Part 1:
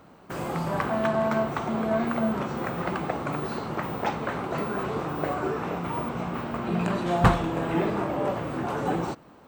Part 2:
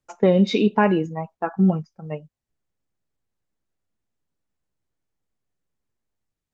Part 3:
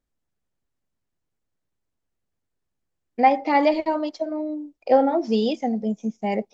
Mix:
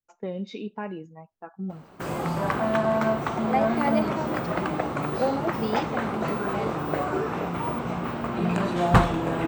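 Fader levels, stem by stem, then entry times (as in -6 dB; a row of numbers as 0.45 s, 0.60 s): +1.5 dB, -16.0 dB, -8.5 dB; 1.70 s, 0.00 s, 0.30 s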